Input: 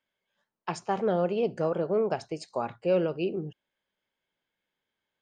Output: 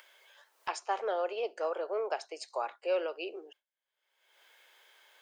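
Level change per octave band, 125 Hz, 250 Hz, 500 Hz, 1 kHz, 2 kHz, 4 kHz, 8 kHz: under -40 dB, -16.5 dB, -6.0 dB, -2.0 dB, -0.5 dB, 0.0 dB, no reading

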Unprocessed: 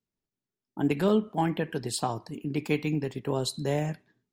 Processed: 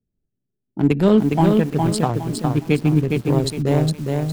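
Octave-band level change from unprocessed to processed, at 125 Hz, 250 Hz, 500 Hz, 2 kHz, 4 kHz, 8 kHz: +13.5 dB, +11.5 dB, +9.0 dB, +6.0 dB, +5.5 dB, +5.0 dB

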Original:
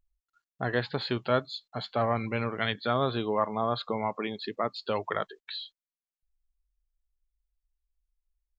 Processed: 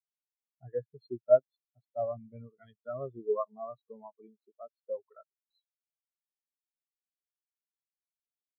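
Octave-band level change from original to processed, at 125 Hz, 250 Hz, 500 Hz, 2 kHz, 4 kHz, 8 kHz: -15.0 dB, -16.0 dB, -1.0 dB, under -25 dB, under -35 dB, no reading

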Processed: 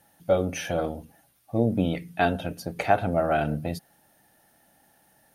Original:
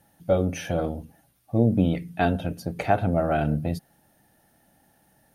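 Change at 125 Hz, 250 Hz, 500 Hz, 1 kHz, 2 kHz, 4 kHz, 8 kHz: -5.0 dB, -3.0 dB, 0.0 dB, +1.0 dB, +2.0 dB, +2.5 dB, no reading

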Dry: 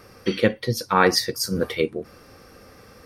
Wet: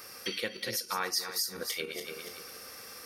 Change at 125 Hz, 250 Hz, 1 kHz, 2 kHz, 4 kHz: -23.0 dB, -20.0 dB, -14.5 dB, -10.5 dB, -6.0 dB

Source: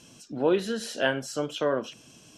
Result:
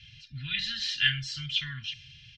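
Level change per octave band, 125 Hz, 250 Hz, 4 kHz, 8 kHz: +3.0 dB, -16.5 dB, +9.0 dB, -6.0 dB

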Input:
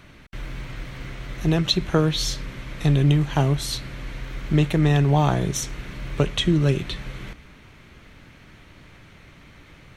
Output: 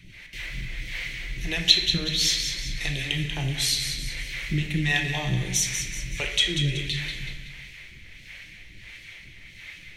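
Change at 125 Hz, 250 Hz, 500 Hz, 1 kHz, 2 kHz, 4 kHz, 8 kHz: -8.5 dB, -10.0 dB, -13.0 dB, -12.0 dB, +5.5 dB, +5.5 dB, +5.5 dB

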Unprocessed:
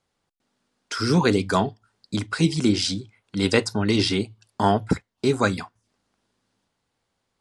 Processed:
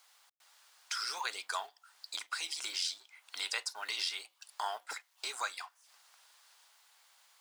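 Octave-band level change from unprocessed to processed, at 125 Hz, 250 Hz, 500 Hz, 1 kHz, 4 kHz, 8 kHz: under -40 dB, under -40 dB, -27.5 dB, -13.0 dB, -8.0 dB, -6.5 dB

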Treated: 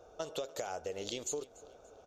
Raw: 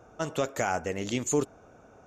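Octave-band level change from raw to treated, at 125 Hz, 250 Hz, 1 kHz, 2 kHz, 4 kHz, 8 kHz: -18.0 dB, -16.0 dB, -12.0 dB, -14.5 dB, -3.0 dB, -7.0 dB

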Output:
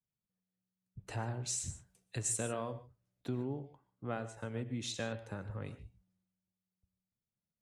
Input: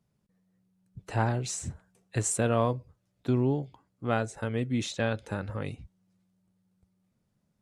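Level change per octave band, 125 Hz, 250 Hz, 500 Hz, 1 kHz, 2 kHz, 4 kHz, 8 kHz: -10.5 dB, -11.0 dB, -11.0 dB, -12.0 dB, -10.0 dB, -4.5 dB, -3.5 dB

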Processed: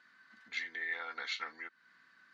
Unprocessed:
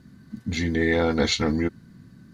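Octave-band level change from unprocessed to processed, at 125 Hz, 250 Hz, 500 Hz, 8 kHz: under -40 dB, -39.0 dB, -30.5 dB, -21.5 dB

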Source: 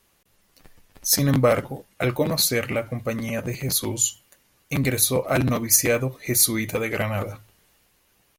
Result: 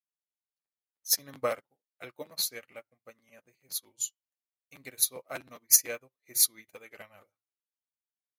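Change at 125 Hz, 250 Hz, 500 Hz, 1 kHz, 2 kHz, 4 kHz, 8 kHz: -33.0 dB, -27.5 dB, -16.0 dB, -13.5 dB, -16.0 dB, -7.5 dB, -6.0 dB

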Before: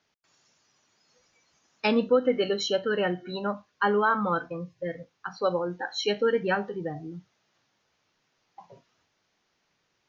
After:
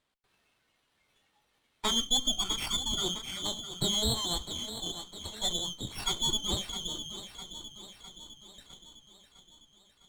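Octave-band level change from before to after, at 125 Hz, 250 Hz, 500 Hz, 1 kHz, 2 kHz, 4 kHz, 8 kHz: -2.0 dB, -9.0 dB, -17.0 dB, -11.5 dB, -15.0 dB, +8.5 dB, no reading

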